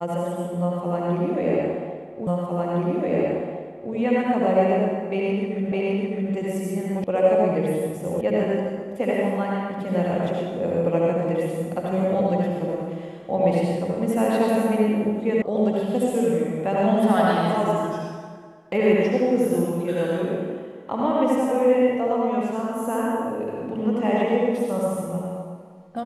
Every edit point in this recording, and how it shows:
0:02.27: the same again, the last 1.66 s
0:05.72: the same again, the last 0.61 s
0:07.04: cut off before it has died away
0:08.21: cut off before it has died away
0:15.42: cut off before it has died away

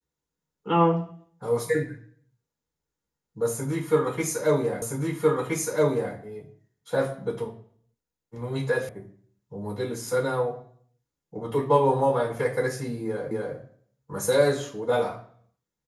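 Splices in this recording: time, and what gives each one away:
0:04.82: the same again, the last 1.32 s
0:08.89: cut off before it has died away
0:13.31: the same again, the last 0.25 s

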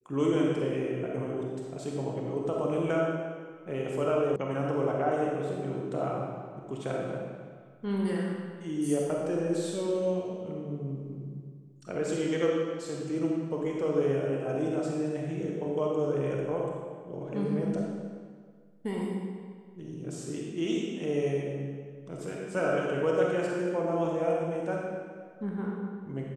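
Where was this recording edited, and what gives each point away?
0:04.36: cut off before it has died away

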